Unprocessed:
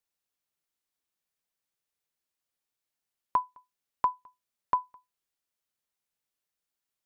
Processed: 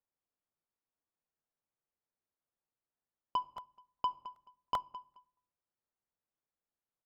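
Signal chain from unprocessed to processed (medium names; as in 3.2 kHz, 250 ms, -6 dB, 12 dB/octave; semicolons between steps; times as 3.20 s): low-pass 1.2 kHz 12 dB/octave; saturation -24.5 dBFS, distortion -11 dB; feedback delay 215 ms, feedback 17%, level -15.5 dB; on a send at -16.5 dB: reverberation RT60 0.60 s, pre-delay 9 ms; on the sum: crackling interface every 0.39 s, samples 64, repeat, from 0.46 s; trim -1 dB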